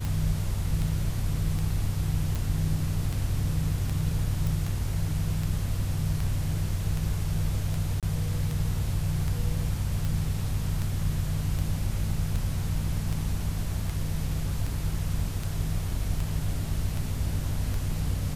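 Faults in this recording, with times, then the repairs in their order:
tick 78 rpm
2.35 pop
4.47 pop
8–8.03 gap 27 ms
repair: de-click; interpolate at 8, 27 ms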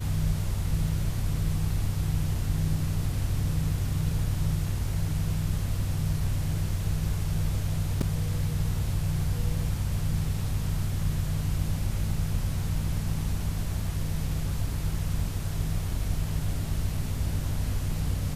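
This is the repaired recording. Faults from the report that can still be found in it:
none

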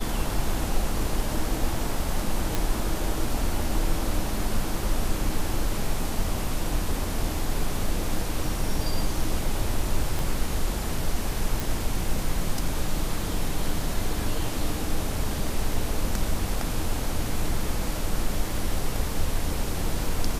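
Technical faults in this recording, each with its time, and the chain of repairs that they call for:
2.55 pop
10.19 pop
11.6 pop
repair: de-click

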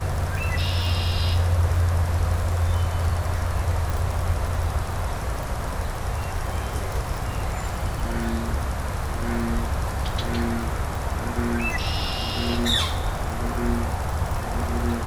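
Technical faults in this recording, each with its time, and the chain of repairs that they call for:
crackle 45/s -27 dBFS
3.9 pop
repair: de-click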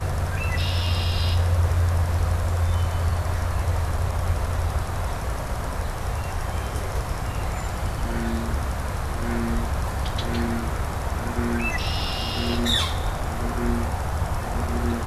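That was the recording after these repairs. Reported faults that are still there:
none

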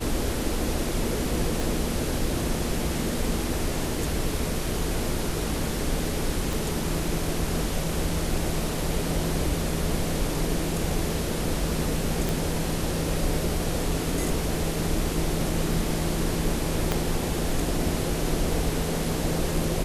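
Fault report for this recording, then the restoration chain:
1.6 pop
6.53 pop
12.29 pop
16.92 pop -9 dBFS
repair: de-click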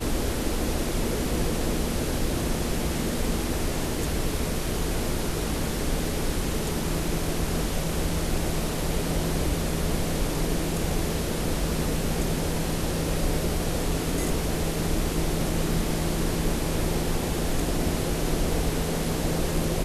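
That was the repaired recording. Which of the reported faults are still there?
1.6 pop
6.53 pop
16.92 pop

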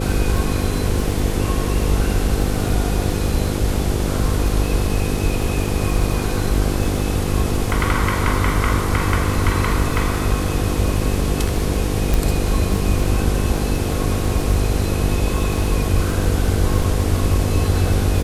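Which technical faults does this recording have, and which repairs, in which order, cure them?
buzz 50 Hz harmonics 10 -23 dBFS
crackle 32/s -25 dBFS
12.14 pop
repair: de-click; de-hum 50 Hz, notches 10

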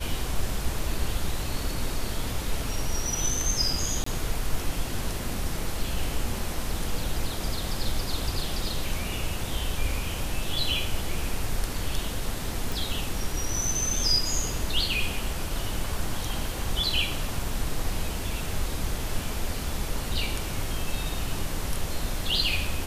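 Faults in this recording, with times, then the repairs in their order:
4.04–4.06 gap 24 ms
12.72 pop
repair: de-click; interpolate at 4.04, 24 ms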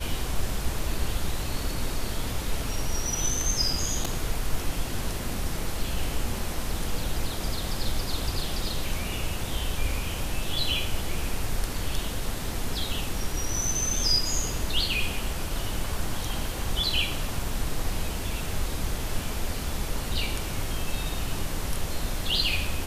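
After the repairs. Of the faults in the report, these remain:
none

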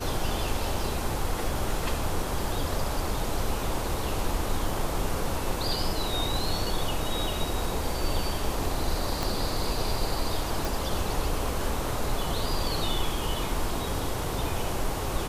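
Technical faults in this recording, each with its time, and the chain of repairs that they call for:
9.23 pop
10.65 pop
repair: de-click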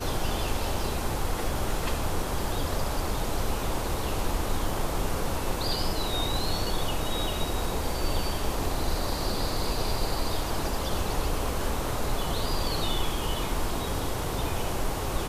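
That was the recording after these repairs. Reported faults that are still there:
9.23 pop

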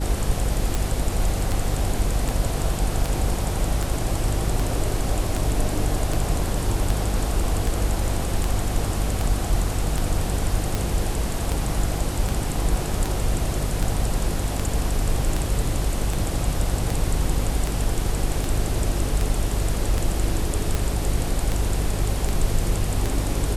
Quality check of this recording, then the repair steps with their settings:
hum 50 Hz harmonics 7 -27 dBFS
tick 78 rpm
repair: de-click; de-hum 50 Hz, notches 7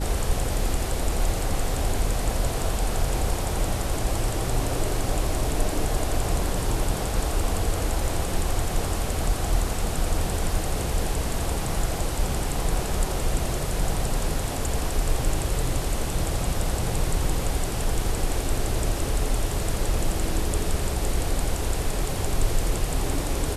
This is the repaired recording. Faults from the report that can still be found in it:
none

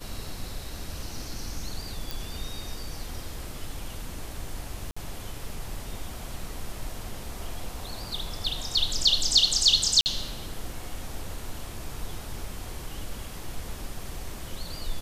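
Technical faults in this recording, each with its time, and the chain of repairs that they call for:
2.11 pop
4.91–4.96 gap 55 ms
10.01–10.06 gap 49 ms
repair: de-click; interpolate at 4.91, 55 ms; interpolate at 10.01, 49 ms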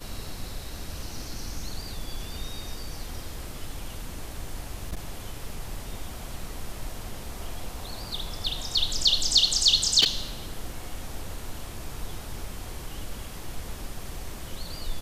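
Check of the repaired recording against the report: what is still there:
none

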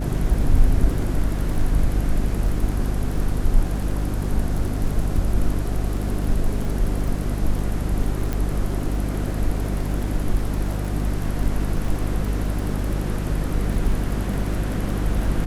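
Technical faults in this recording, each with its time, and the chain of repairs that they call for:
crackle 32/s -28 dBFS
hum 50 Hz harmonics 6 -25 dBFS
8.33 pop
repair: de-click; de-hum 50 Hz, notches 6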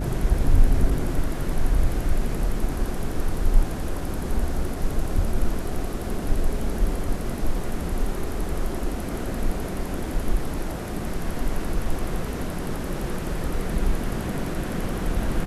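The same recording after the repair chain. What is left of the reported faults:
none

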